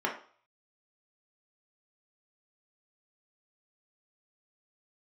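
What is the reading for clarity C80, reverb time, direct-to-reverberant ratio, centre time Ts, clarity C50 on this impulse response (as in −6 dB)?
13.0 dB, 0.45 s, −2.0 dB, 22 ms, 8.0 dB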